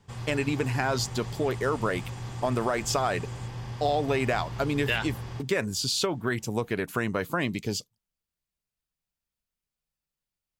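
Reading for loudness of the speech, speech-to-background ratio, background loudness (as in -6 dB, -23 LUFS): -29.0 LUFS, 9.0 dB, -38.0 LUFS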